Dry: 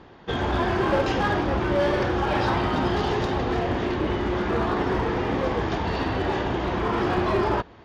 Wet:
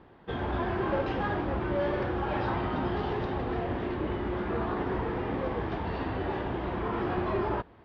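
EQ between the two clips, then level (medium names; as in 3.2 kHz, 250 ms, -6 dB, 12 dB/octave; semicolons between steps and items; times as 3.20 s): distance through air 270 m; -6.0 dB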